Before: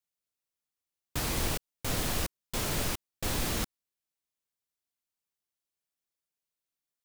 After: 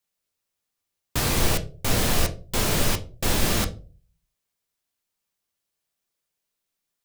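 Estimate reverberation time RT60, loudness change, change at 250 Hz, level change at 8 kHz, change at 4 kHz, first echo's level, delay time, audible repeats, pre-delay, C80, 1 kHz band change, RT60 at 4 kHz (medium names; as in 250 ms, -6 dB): 0.40 s, +8.5 dB, +8.5 dB, +8.0 dB, +8.5 dB, no echo, no echo, no echo, 5 ms, 20.0 dB, +8.0 dB, 0.25 s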